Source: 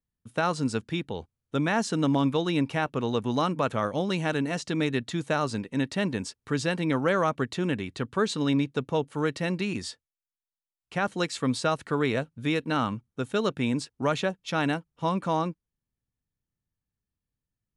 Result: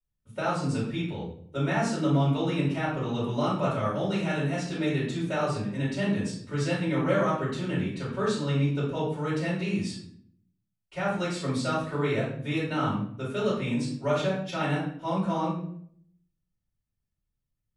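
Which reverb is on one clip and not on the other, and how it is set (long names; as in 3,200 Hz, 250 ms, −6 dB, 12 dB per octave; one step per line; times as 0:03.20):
rectangular room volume 95 cubic metres, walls mixed, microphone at 4.6 metres
level −17 dB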